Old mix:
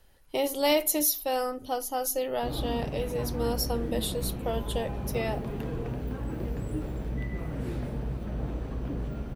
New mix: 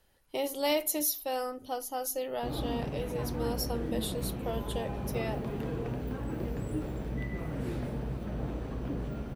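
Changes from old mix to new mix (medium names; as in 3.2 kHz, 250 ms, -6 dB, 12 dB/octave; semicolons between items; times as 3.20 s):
speech -4.5 dB; master: add bass shelf 60 Hz -8.5 dB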